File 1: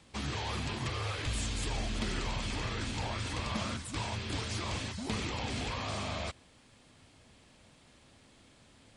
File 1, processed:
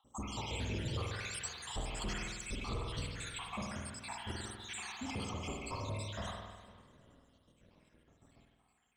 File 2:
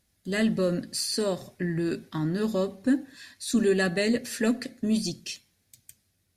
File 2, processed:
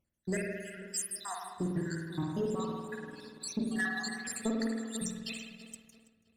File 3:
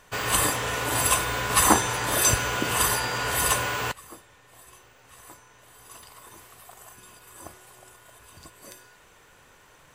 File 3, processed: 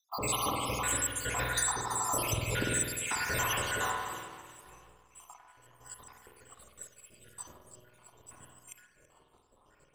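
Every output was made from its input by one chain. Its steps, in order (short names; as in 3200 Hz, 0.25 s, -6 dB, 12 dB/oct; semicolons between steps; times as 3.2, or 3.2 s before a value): random spectral dropouts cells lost 79%; bell 7800 Hz +12 dB 0.26 oct; on a send: echo with dull and thin repeats by turns 0.165 s, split 1500 Hz, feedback 68%, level -11 dB; on the sum: compressor 5:1, threshold -28 dBFS; spring tank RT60 1.3 s, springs 49 ms, chirp 30 ms, DRR 0 dB; sample leveller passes 1; mismatched tape noise reduction decoder only; gain -4.5 dB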